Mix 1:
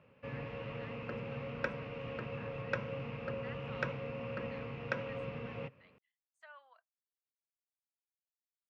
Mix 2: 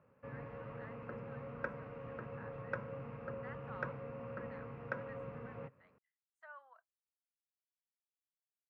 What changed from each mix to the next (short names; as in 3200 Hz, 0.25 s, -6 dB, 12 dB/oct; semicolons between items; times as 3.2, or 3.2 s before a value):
background -5.0 dB; master: add resonant high shelf 2100 Hz -11 dB, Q 1.5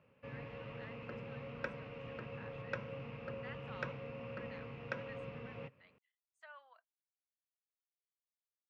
master: add resonant high shelf 2100 Hz +11 dB, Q 1.5